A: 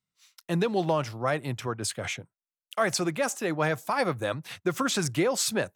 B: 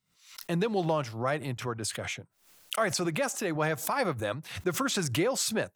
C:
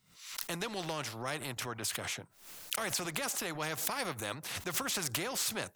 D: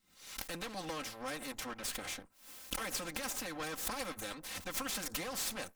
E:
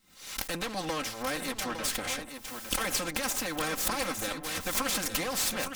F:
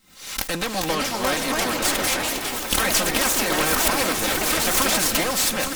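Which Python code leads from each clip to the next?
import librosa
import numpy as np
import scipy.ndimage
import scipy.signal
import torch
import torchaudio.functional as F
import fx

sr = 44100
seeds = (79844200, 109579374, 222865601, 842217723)

y1 = fx.pre_swell(x, sr, db_per_s=110.0)
y1 = y1 * librosa.db_to_amplitude(-2.5)
y2 = fx.spectral_comp(y1, sr, ratio=2.0)
y3 = fx.lower_of_two(y2, sr, delay_ms=3.8)
y3 = y3 * librosa.db_to_amplitude(-2.0)
y4 = y3 + 10.0 ** (-8.0 / 20.0) * np.pad(y3, (int(859 * sr / 1000.0), 0))[:len(y3)]
y4 = y4 * librosa.db_to_amplitude(8.0)
y5 = fx.echo_pitch(y4, sr, ms=488, semitones=3, count=3, db_per_echo=-3.0)
y5 = fx.echo_split(y5, sr, split_hz=500.0, low_ms=534, high_ms=247, feedback_pct=52, wet_db=-12.5)
y5 = y5 * librosa.db_to_amplitude(8.0)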